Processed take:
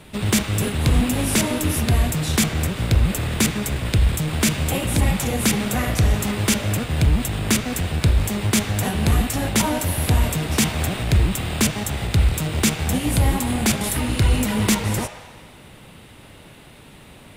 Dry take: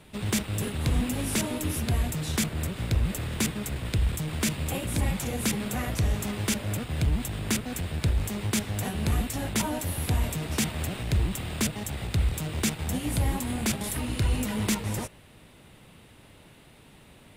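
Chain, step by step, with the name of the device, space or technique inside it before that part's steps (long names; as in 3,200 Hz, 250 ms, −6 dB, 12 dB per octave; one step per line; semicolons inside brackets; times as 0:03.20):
filtered reverb send (on a send: high-pass filter 560 Hz 24 dB per octave + low-pass filter 4,100 Hz 12 dB per octave + convolution reverb RT60 1.6 s, pre-delay 20 ms, DRR 7 dB)
on the sum: level +8 dB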